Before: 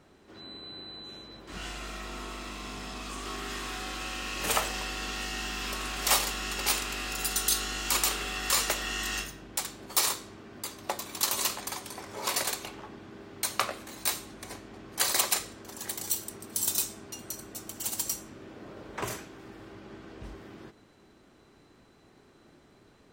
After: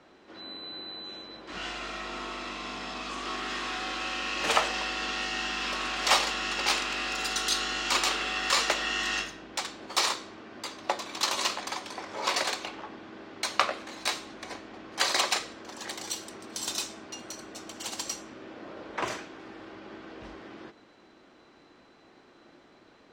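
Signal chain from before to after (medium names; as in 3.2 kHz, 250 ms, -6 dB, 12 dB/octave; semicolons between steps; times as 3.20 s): three-band isolator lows -13 dB, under 240 Hz, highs -24 dB, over 6.2 kHz; band-stop 410 Hz, Q 12; trim +4.5 dB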